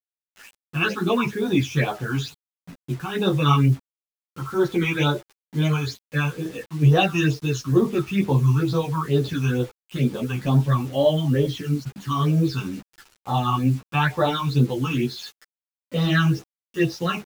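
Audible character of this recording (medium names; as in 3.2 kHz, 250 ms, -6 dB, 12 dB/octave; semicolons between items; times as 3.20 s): phasing stages 8, 2.2 Hz, lowest notch 520–2400 Hz; a quantiser's noise floor 8-bit, dither none; a shimmering, thickened sound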